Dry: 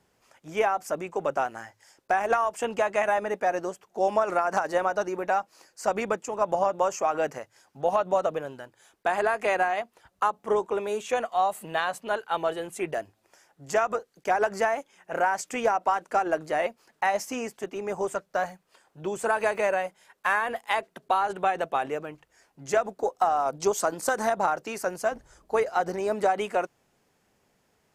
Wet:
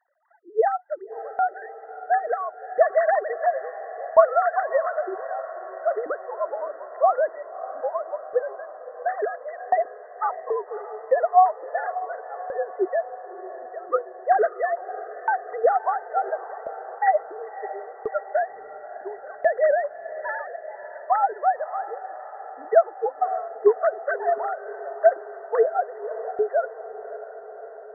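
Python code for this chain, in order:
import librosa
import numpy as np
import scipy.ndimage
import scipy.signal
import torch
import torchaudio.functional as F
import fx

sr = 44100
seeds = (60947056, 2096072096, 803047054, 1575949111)

y = fx.sine_speech(x, sr)
y = fx.brickwall_lowpass(y, sr, high_hz=2000.0)
y = fx.tremolo_shape(y, sr, shape='saw_down', hz=0.72, depth_pct=100)
y = fx.echo_diffused(y, sr, ms=602, feedback_pct=68, wet_db=-14.0)
y = y * 10.0 ** (7.5 / 20.0)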